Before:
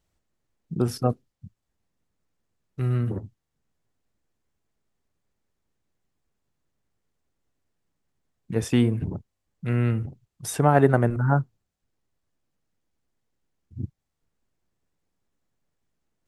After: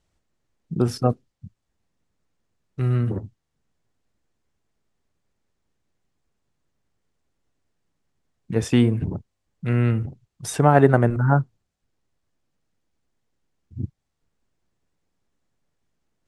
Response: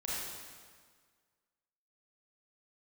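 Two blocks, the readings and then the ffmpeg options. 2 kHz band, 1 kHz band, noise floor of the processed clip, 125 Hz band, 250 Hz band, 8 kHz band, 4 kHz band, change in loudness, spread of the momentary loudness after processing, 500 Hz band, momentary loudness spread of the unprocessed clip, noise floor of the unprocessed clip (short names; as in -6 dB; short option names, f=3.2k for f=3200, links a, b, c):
+3.0 dB, +3.0 dB, -78 dBFS, +3.0 dB, +3.0 dB, +1.0 dB, +3.0 dB, +3.0 dB, 18 LU, +3.0 dB, 18 LU, -81 dBFS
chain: -af "lowpass=9.2k,volume=3dB"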